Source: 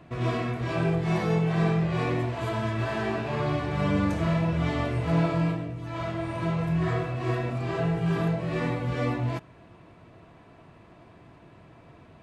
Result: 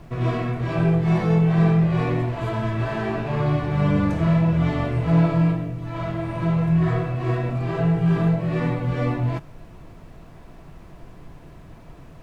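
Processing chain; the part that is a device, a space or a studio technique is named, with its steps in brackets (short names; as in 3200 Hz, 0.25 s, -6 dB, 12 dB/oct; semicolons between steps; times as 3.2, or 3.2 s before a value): car interior (bell 150 Hz +6 dB 0.5 oct; high shelf 3300 Hz -7 dB; brown noise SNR 21 dB); gain +3 dB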